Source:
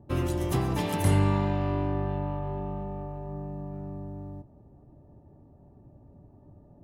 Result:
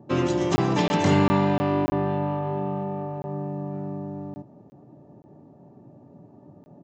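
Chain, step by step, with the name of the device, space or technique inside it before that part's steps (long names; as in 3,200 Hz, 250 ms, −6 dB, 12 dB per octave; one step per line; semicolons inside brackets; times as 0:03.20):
call with lost packets (high-pass filter 140 Hz 24 dB per octave; downsampling to 16,000 Hz; dropped packets)
level +7.5 dB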